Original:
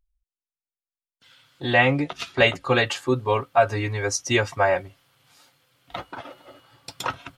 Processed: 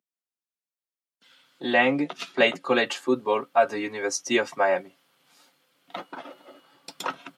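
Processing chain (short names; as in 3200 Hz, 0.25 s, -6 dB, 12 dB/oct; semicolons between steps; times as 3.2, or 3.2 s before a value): steep high-pass 180 Hz 36 dB/oct; low shelf 400 Hz +4.5 dB; gain -3 dB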